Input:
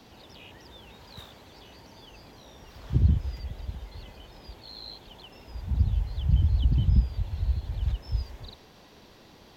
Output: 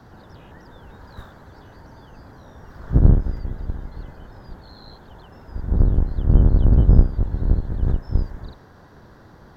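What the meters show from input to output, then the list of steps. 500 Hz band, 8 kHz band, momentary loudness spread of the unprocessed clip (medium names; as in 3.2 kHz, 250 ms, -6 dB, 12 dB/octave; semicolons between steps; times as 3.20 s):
+15.0 dB, no reading, 23 LU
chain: octave divider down 1 oct, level +4 dB; resonant high shelf 2 kHz -8 dB, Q 3; trim +3.5 dB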